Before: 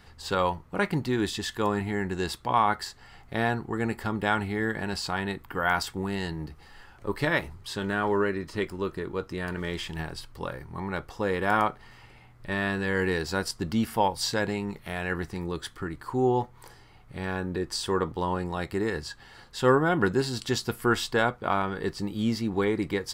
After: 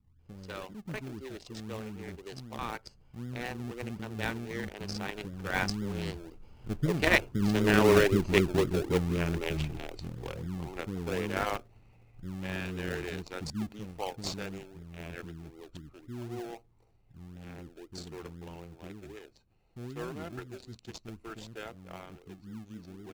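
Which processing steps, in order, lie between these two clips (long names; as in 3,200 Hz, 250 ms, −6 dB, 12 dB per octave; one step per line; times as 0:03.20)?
adaptive Wiener filter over 25 samples
source passing by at 0:08.13, 19 m/s, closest 15 metres
graphic EQ with 15 bands 1,000 Hz −6 dB, 2,500 Hz +7 dB, 6,300 Hz +10 dB
multiband delay without the direct sound lows, highs 190 ms, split 320 Hz
in parallel at −4.5 dB: sample-and-hold swept by an LFO 36×, swing 60% 3.9 Hz
on the sum: level +5.5 dB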